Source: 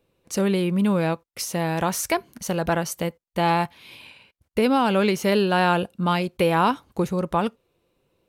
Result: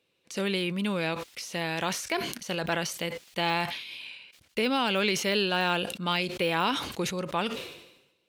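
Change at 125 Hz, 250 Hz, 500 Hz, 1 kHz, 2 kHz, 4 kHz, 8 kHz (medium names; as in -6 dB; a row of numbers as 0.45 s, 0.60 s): -9.5 dB, -8.5 dB, -7.5 dB, -7.5 dB, -1.0 dB, +2.5 dB, -5.0 dB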